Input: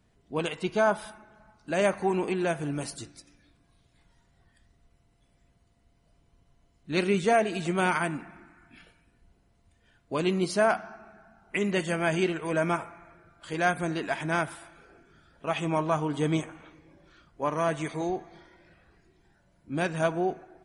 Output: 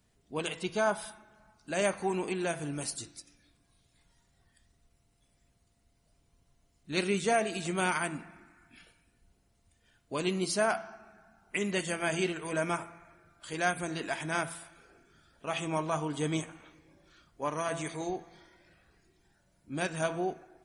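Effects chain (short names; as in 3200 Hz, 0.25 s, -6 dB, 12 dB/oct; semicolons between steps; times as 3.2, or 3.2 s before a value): high shelf 3900 Hz +10.5 dB; de-hum 166.6 Hz, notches 27; gain -5 dB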